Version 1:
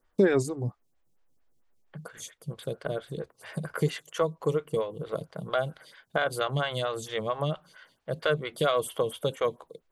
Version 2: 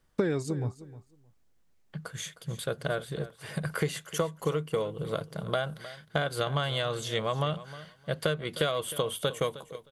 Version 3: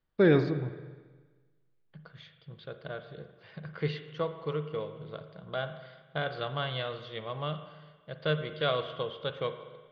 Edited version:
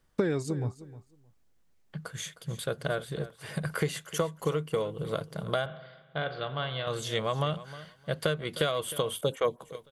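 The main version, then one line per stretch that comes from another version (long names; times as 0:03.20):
2
0:05.66–0:06.87: punch in from 3
0:09.21–0:09.61: punch in from 1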